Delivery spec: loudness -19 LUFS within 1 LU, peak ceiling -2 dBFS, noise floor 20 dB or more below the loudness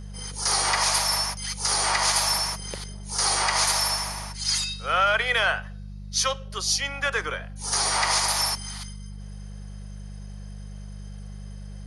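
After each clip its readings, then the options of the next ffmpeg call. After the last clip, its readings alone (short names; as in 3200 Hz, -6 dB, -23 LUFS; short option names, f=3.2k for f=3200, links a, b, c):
hum 50 Hz; harmonics up to 200 Hz; hum level -35 dBFS; loudness -23.5 LUFS; peak -10.0 dBFS; loudness target -19.0 LUFS
-> -af "bandreject=f=50:t=h:w=4,bandreject=f=100:t=h:w=4,bandreject=f=150:t=h:w=4,bandreject=f=200:t=h:w=4"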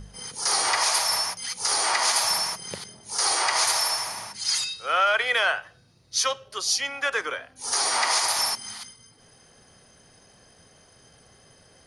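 hum none; loudness -23.5 LUFS; peak -10.0 dBFS; loudness target -19.0 LUFS
-> -af "volume=4.5dB"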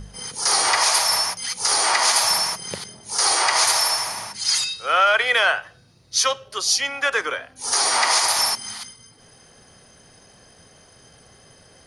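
loudness -19.0 LUFS; peak -5.5 dBFS; noise floor -52 dBFS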